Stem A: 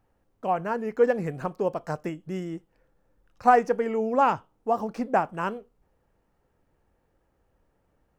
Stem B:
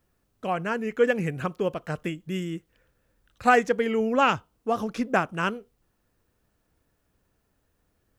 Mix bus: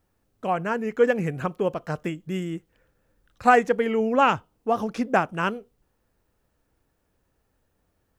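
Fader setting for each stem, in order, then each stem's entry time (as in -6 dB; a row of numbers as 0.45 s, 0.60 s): -6.5 dB, -1.5 dB; 0.00 s, 0.00 s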